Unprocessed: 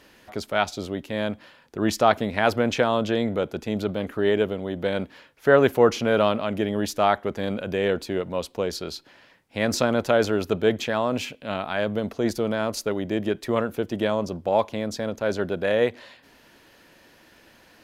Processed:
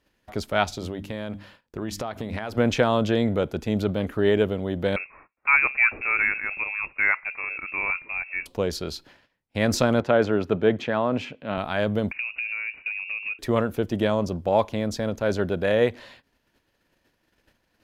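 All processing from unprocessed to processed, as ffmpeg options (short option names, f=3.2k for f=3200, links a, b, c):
-filter_complex "[0:a]asettb=1/sr,asplit=3[a][b][c];[a]atrim=end=0.654[d];[b]atrim=start=0.65:end=2.58,asetpts=PTS-STARTPTS,afade=t=in:d=0.004:c=qsin,afade=t=out:st=1.926:d=0.004:c=qsin,bandreject=f=50:t=h:w=6,bandreject=f=100:t=h:w=6,bandreject=f=150:t=h:w=6,bandreject=f=200:t=h:w=6,bandreject=f=250:t=h:w=6,bandreject=f=300:t=h:w=6,acompressor=threshold=-28dB:ratio=6:attack=3.2:release=140:knee=1:detection=peak[e];[c]atrim=start=2.576[f];[d][e]acrossfade=d=0.004:c1=hsin:c2=qsin[g];[g][f]acrossfade=d=0.004:c1=qsin:c2=hsin,asettb=1/sr,asplit=3[h][i][j];[h]atrim=end=4.964[k];[i]atrim=start=4.96:end=8.46,asetpts=PTS-STARTPTS,afade=t=in:d=0.004:c=qsin,afade=t=out:st=3.496:d=0.004:c=qsin,lowshelf=f=450:g=-7.5,bandreject=f=133.1:t=h:w=4,bandreject=f=266.2:t=h:w=4,bandreject=f=399.3:t=h:w=4,bandreject=f=532.4:t=h:w=4,bandreject=f=665.5:t=h:w=4,bandreject=f=798.6:t=h:w=4,lowpass=f=2.4k:t=q:w=0.5098,lowpass=f=2.4k:t=q:w=0.6013,lowpass=f=2.4k:t=q:w=0.9,lowpass=f=2.4k:t=q:w=2.563,afreqshift=-2800[l];[j]atrim=start=8.456[m];[k][l]acrossfade=d=0.004:c1=hsin:c2=qsin[n];[n][m]acrossfade=d=0.004:c1=qsin:c2=hsin,asettb=1/sr,asplit=3[o][p][q];[o]atrim=end=10.004[r];[p]atrim=start=10:end=11.58,asetpts=PTS-STARTPTS,afade=t=in:d=0.004:c=qsin,afade=t=out:st=1.576:d=0.004:c=qsin,highpass=120,lowpass=2.2k,aemphasis=mode=production:type=50fm[s];[q]atrim=start=11.576[t];[r][s]acrossfade=d=0.004:c1=hsin:c2=qsin[u];[u][t]acrossfade=d=0.004:c1=qsin:c2=hsin,asettb=1/sr,asplit=3[v][w][x];[v]atrim=end=12.114[y];[w]atrim=start=12.11:end=13.39,asetpts=PTS-STARTPTS,afade=t=in:d=0.004:c=qsin,afade=t=out:st=1.276:d=0.004:c=qsin,equalizer=f=510:w=0.91:g=14,acompressor=threshold=-29dB:ratio=5:attack=3.2:release=140:knee=1:detection=peak,lowpass=f=2.5k:t=q:w=0.5098,lowpass=f=2.5k:t=q:w=0.6013,lowpass=f=2.5k:t=q:w=0.9,lowpass=f=2.5k:t=q:w=2.563,afreqshift=-2900[z];[x]atrim=start=13.386[aa];[y][z]acrossfade=d=0.004:c1=hsin:c2=qsin[ab];[ab][aa]acrossfade=d=0.004:c1=qsin:c2=hsin,agate=range=-19dB:threshold=-51dB:ratio=16:detection=peak,lowshelf=f=110:g=11.5"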